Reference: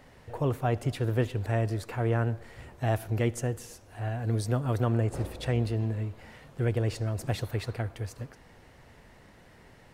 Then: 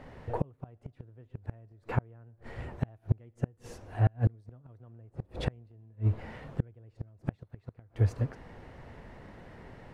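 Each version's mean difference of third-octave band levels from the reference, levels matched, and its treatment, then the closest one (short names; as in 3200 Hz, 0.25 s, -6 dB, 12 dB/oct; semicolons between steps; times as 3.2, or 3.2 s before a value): 12.5 dB: LPF 1400 Hz 6 dB/oct; dynamic EQ 120 Hz, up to +5 dB, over -38 dBFS, Q 0.94; flipped gate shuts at -20 dBFS, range -36 dB; gain +6.5 dB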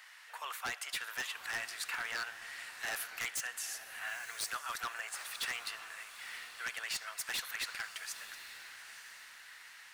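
17.5 dB: HPF 1300 Hz 24 dB/oct; wavefolder -36.5 dBFS; on a send: diffused feedback echo 0.92 s, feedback 44%, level -11 dB; on the sum: gain +6.5 dB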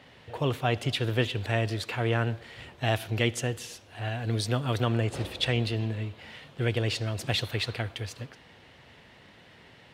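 3.0 dB: HPF 82 Hz; bell 3300 Hz +15 dB 1.4 oct; mismatched tape noise reduction decoder only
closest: third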